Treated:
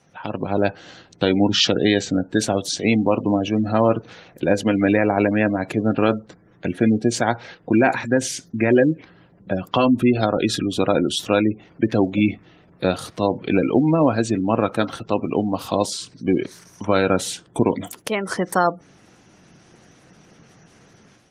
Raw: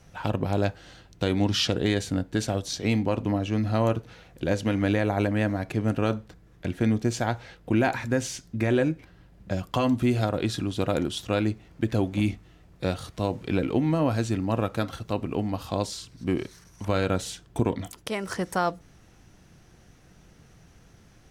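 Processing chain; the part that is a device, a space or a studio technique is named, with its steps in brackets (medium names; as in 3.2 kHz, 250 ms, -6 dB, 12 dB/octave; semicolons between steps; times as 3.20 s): treble shelf 3.2 kHz +2.5 dB; 2.17–2.72 s: gate with hold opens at -36 dBFS; noise-suppressed video call (high-pass 170 Hz 12 dB/octave; spectral gate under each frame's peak -25 dB strong; level rider gain up to 9 dB; Opus 24 kbps 48 kHz)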